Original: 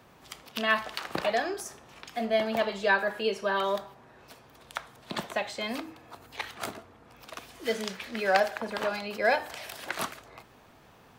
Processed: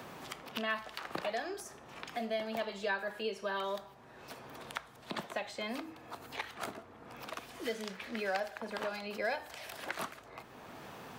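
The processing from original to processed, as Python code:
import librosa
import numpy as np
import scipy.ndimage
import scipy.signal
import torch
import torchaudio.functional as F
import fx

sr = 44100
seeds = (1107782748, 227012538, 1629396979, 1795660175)

y = fx.band_squash(x, sr, depth_pct=70)
y = y * librosa.db_to_amplitude(-8.0)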